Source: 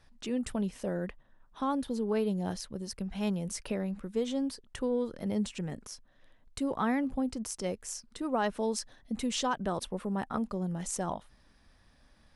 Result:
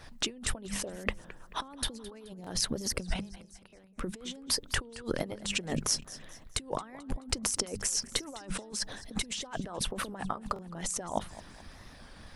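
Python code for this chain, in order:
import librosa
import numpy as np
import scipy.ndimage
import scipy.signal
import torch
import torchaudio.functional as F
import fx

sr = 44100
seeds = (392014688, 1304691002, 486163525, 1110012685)

y = fx.gate_flip(x, sr, shuts_db=-29.0, range_db=-34, at=(3.13, 3.98), fade=0.02)
y = fx.hum_notches(y, sr, base_hz=50, count=4)
y = fx.over_compress(y, sr, threshold_db=-43.0, ratio=-1.0)
y = fx.echo_feedback(y, sr, ms=214, feedback_pct=43, wet_db=-17)
y = fx.hpss(y, sr, part='percussive', gain_db=9)
y = fx.buffer_glitch(y, sr, at_s=(2.42, 3.68, 6.0, 8.05, 10.54), block=1024, repeats=1)
y = fx.record_warp(y, sr, rpm=33.33, depth_cents=100.0)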